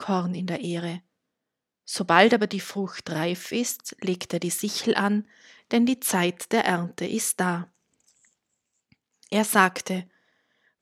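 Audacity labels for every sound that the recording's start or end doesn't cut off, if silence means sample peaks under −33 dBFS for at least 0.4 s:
1.880000	5.210000	sound
5.710000	7.630000	sound
9.230000	10.010000	sound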